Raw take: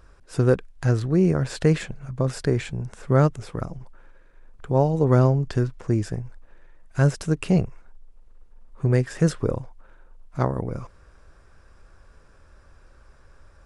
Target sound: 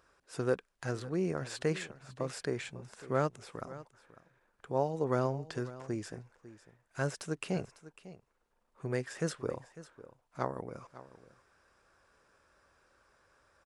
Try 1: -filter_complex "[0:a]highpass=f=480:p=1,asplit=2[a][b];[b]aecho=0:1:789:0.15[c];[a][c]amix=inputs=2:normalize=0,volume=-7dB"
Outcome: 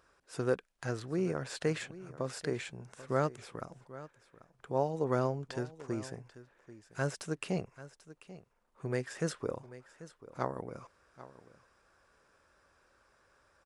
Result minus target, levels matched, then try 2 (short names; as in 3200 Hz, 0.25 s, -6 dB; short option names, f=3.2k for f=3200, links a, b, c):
echo 0.239 s late
-filter_complex "[0:a]highpass=f=480:p=1,asplit=2[a][b];[b]aecho=0:1:550:0.15[c];[a][c]amix=inputs=2:normalize=0,volume=-7dB"